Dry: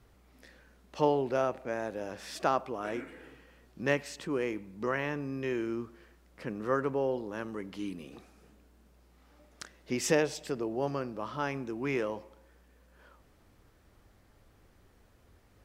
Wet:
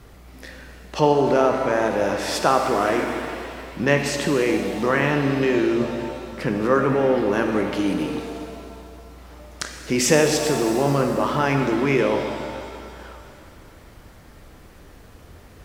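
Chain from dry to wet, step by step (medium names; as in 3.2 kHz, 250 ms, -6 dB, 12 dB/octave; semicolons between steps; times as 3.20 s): in parallel at -3 dB: compressor with a negative ratio -37 dBFS; on the sum: pitch-shifted reverb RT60 2.4 s, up +7 st, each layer -8 dB, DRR 4 dB; trim +8.5 dB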